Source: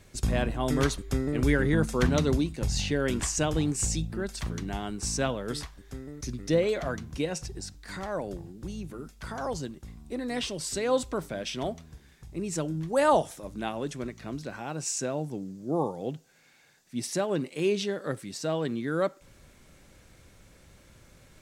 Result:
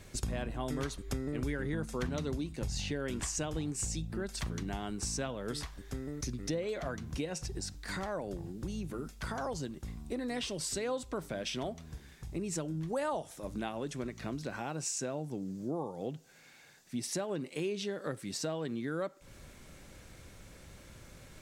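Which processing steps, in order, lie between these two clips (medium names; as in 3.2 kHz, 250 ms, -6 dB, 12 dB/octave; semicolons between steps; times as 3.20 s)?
compression 4:1, threshold -37 dBFS, peak gain reduction 16.5 dB; trim +2.5 dB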